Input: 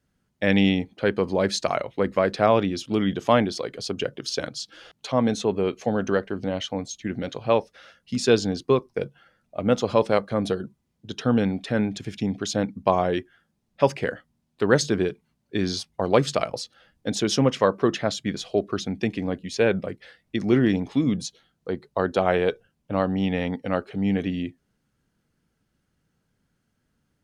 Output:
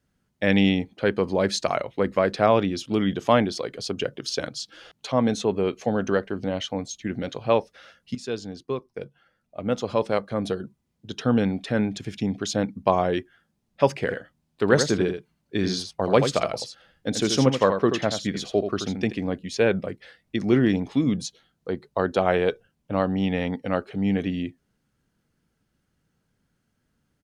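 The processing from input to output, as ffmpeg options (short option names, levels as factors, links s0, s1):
-filter_complex "[0:a]asplit=3[s0][s1][s2];[s0]afade=t=out:st=14.08:d=0.02[s3];[s1]aecho=1:1:82:0.422,afade=t=in:st=14.08:d=0.02,afade=t=out:st=19.11:d=0.02[s4];[s2]afade=t=in:st=19.11:d=0.02[s5];[s3][s4][s5]amix=inputs=3:normalize=0,asplit=2[s6][s7];[s6]atrim=end=8.15,asetpts=PTS-STARTPTS,afade=t=out:st=8.146:d=0.004:c=hsin:silence=0.223872[s8];[s7]atrim=start=8.15,asetpts=PTS-STARTPTS,afade=t=in:d=3.17:silence=0.223872[s9];[s8][s9]concat=n=2:v=0:a=1"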